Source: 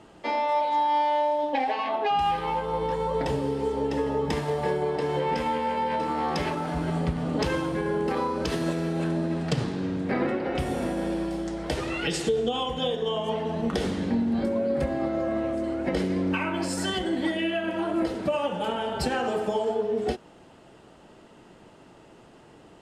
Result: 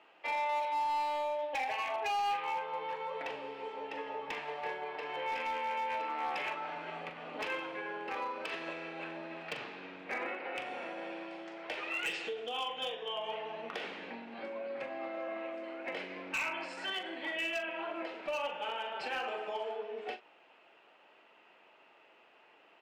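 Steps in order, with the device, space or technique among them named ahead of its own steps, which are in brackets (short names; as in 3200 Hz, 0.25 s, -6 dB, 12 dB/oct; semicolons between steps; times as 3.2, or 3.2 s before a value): megaphone (BPF 660–3000 Hz; bell 2500 Hz +11 dB 0.49 oct; hard clip -23 dBFS, distortion -17 dB; doubler 42 ms -10 dB); gain -7 dB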